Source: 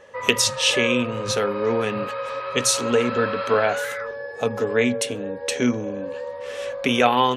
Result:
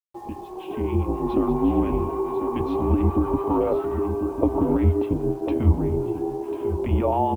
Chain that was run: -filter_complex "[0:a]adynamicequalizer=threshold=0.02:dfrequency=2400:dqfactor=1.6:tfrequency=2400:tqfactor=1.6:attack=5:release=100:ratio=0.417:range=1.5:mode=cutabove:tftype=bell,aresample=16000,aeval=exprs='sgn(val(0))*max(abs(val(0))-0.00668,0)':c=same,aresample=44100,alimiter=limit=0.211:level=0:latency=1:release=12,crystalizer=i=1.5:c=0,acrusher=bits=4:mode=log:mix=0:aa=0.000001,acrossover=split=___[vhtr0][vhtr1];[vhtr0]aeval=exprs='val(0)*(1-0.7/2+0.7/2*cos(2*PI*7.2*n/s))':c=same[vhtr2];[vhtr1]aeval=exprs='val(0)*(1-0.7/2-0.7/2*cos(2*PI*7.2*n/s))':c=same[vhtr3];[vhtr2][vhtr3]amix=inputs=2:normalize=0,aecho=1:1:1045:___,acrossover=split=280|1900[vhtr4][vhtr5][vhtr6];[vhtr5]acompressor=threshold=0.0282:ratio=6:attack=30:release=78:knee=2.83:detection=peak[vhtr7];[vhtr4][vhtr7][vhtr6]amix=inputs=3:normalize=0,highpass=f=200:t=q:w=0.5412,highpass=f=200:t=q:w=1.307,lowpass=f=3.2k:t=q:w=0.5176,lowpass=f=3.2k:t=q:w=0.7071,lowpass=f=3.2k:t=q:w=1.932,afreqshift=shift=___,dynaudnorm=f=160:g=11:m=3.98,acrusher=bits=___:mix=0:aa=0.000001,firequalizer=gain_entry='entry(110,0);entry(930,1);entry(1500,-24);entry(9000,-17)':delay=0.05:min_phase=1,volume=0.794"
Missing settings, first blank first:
1100, 0.282, -160, 5